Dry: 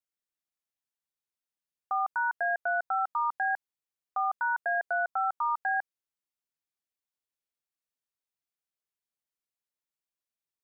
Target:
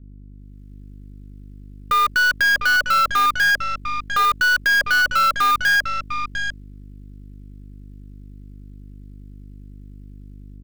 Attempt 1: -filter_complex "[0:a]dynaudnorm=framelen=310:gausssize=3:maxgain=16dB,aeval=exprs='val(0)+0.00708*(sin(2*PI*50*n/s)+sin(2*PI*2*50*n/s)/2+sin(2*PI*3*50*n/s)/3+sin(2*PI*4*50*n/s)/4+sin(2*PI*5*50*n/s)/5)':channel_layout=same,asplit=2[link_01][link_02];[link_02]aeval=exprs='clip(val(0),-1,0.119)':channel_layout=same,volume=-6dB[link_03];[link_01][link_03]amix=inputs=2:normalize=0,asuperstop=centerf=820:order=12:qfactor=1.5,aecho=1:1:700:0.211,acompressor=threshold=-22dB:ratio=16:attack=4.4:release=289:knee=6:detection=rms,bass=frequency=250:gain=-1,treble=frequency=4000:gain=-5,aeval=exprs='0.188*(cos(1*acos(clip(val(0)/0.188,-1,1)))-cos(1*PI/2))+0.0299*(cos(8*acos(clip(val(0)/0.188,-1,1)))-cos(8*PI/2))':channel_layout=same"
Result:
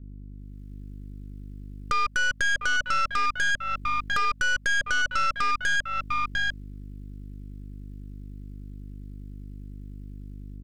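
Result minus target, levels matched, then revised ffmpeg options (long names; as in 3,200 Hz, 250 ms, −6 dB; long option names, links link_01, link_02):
downward compressor: peak gain reduction +13 dB
-filter_complex "[0:a]dynaudnorm=framelen=310:gausssize=3:maxgain=16dB,aeval=exprs='val(0)+0.00708*(sin(2*PI*50*n/s)+sin(2*PI*2*50*n/s)/2+sin(2*PI*3*50*n/s)/3+sin(2*PI*4*50*n/s)/4+sin(2*PI*5*50*n/s)/5)':channel_layout=same,asplit=2[link_01][link_02];[link_02]aeval=exprs='clip(val(0),-1,0.119)':channel_layout=same,volume=-6dB[link_03];[link_01][link_03]amix=inputs=2:normalize=0,asuperstop=centerf=820:order=12:qfactor=1.5,bass=frequency=250:gain=-1,treble=frequency=4000:gain=-5,aecho=1:1:700:0.211,aeval=exprs='0.188*(cos(1*acos(clip(val(0)/0.188,-1,1)))-cos(1*PI/2))+0.0299*(cos(8*acos(clip(val(0)/0.188,-1,1)))-cos(8*PI/2))':channel_layout=same"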